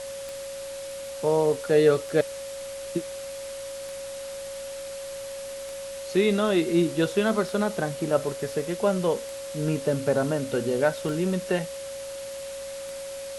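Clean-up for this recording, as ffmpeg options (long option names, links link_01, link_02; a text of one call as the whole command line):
ffmpeg -i in.wav -af "adeclick=threshold=4,bandreject=frequency=56.4:width_type=h:width=4,bandreject=frequency=112.8:width_type=h:width=4,bandreject=frequency=169.2:width_type=h:width=4,bandreject=frequency=225.6:width_type=h:width=4,bandreject=frequency=550:width=30,afwtdn=0.0089" out.wav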